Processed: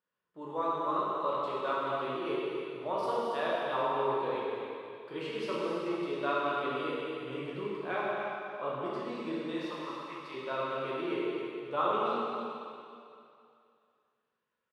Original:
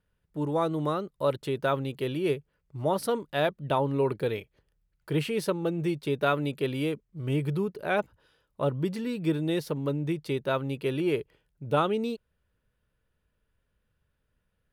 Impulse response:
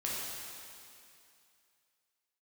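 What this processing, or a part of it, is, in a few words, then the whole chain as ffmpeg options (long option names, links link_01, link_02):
station announcement: -filter_complex "[0:a]asettb=1/sr,asplit=3[link_01][link_02][link_03];[link_01]atrim=end=9.524[link_04];[link_02]atrim=start=9.52:end=10.34,asetpts=PTS-STARTPTS,afade=type=in:duration=0.004:curve=qsin,afade=type=out:start_time=0.816:duration=0.004:curve=qsin,lowshelf=frequency=620:width_type=q:width=1.5:gain=-11[link_05];[link_03]atrim=start=10.336[link_06];[link_04][link_05]acrossfade=duration=0.004:curve1=hsin:curve2=qsin[link_07];[link_07][link_06]acrossfade=duration=0.004:curve1=qsin:curve2=hsin,highpass=310,lowpass=4900,equalizer=frequency=1100:width_type=o:width=0.39:gain=8.5,aecho=1:1:125.4|221.6|277:0.251|0.316|0.316[link_08];[1:a]atrim=start_sample=2205[link_09];[link_08][link_09]afir=irnorm=-1:irlink=0,volume=-9dB"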